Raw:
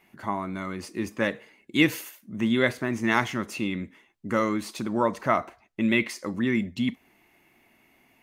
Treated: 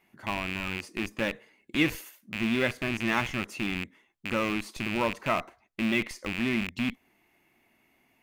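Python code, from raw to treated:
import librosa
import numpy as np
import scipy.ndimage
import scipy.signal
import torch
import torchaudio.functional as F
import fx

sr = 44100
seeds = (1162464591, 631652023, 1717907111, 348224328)

p1 = fx.rattle_buzz(x, sr, strikes_db=-36.0, level_db=-16.0)
p2 = fx.schmitt(p1, sr, flips_db=-26.0)
p3 = p1 + F.gain(torch.from_numpy(p2), -9.0).numpy()
y = F.gain(torch.from_numpy(p3), -5.5).numpy()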